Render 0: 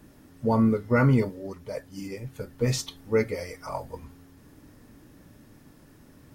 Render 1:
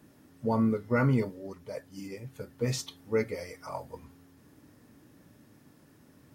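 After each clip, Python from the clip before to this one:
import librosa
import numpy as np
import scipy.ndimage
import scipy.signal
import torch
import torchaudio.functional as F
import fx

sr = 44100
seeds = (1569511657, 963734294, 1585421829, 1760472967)

y = scipy.signal.sosfilt(scipy.signal.butter(2, 88.0, 'highpass', fs=sr, output='sos'), x)
y = y * 10.0 ** (-4.5 / 20.0)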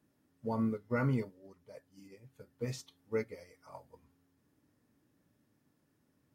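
y = fx.upward_expand(x, sr, threshold_db=-43.0, expansion=1.5)
y = y * 10.0 ** (-5.5 / 20.0)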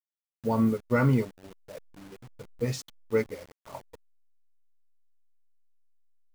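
y = fx.delta_hold(x, sr, step_db=-52.0)
y = y * 10.0 ** (8.5 / 20.0)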